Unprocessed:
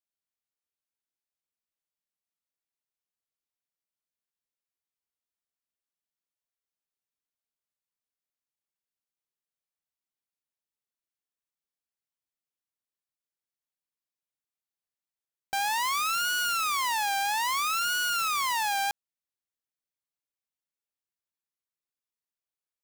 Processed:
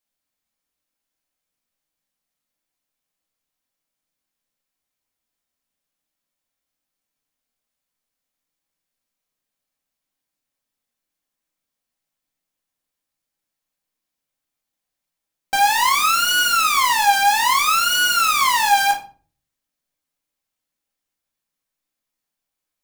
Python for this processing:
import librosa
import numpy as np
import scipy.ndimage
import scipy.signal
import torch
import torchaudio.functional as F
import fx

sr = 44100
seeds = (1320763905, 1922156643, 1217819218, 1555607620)

y = fx.room_shoebox(x, sr, seeds[0], volume_m3=290.0, walls='furnished', distance_m=2.1)
y = y * librosa.db_to_amplitude(7.5)